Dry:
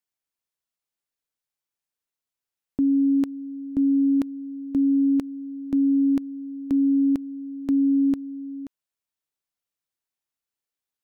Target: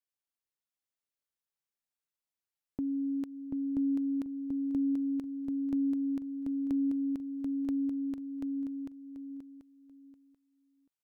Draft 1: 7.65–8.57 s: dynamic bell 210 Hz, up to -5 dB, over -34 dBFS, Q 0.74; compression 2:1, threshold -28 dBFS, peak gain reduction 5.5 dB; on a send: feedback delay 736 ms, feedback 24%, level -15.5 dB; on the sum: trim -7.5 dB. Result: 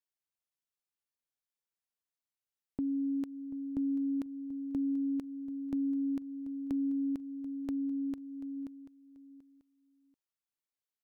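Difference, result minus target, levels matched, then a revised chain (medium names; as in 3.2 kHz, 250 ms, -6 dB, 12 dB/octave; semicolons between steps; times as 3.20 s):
echo-to-direct -11.5 dB
7.65–8.57 s: dynamic bell 210 Hz, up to -5 dB, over -34 dBFS, Q 0.74; compression 2:1, threshold -28 dBFS, peak gain reduction 5.5 dB; on a send: feedback delay 736 ms, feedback 24%, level -4 dB; on the sum: trim -7.5 dB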